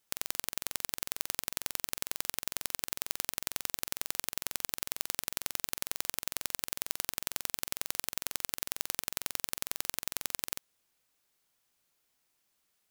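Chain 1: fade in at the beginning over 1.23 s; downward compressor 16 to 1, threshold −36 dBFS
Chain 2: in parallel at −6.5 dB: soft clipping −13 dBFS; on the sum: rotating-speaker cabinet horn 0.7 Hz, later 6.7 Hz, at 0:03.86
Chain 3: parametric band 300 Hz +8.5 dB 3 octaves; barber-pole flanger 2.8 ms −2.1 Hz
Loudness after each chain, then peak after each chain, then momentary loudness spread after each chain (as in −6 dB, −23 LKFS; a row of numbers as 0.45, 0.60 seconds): −45.0, −37.5, −37.5 LKFS; −13.5, −3.0, −8.5 dBFS; 1, 4, 1 LU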